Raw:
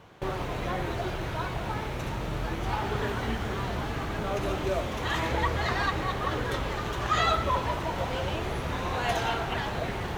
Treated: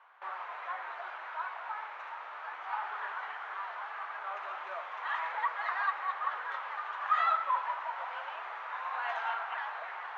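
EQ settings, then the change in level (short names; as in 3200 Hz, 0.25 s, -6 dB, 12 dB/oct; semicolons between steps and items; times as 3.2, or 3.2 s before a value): HPF 920 Hz 24 dB/oct; Chebyshev low-pass 1400 Hz, order 2; 0.0 dB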